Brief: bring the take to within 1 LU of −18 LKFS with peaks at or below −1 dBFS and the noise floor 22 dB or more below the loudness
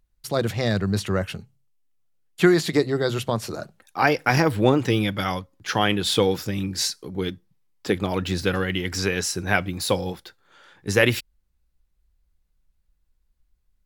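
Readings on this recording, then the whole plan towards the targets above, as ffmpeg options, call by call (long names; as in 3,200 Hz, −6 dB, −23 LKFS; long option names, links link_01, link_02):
integrated loudness −23.5 LKFS; sample peak −3.5 dBFS; target loudness −18.0 LKFS
→ -af "volume=5.5dB,alimiter=limit=-1dB:level=0:latency=1"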